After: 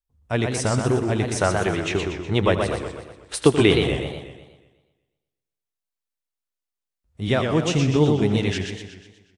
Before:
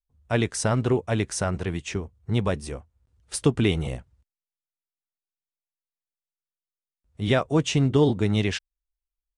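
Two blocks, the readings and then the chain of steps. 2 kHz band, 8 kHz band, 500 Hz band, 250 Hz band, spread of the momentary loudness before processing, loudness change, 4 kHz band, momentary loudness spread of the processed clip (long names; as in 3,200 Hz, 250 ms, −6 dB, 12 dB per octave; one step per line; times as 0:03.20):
+5.0 dB, +1.5 dB, +4.5 dB, +3.0 dB, 12 LU, +3.0 dB, +4.5 dB, 14 LU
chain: repeating echo 83 ms, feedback 55%, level −14 dB
gain on a spectral selection 0:01.37–0:04.21, 290–4,400 Hz +7 dB
feedback echo with a swinging delay time 122 ms, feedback 51%, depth 175 cents, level −5 dB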